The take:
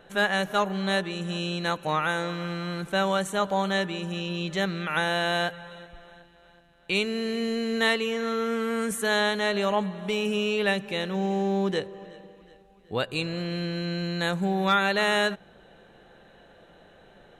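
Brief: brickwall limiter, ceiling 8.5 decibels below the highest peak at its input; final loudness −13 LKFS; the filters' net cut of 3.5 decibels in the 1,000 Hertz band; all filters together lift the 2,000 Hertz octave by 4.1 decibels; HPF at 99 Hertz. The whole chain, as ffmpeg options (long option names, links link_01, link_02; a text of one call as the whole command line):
ffmpeg -i in.wav -af "highpass=99,equalizer=frequency=1000:width_type=o:gain=-8,equalizer=frequency=2000:width_type=o:gain=8,volume=15.5dB,alimiter=limit=-3dB:level=0:latency=1" out.wav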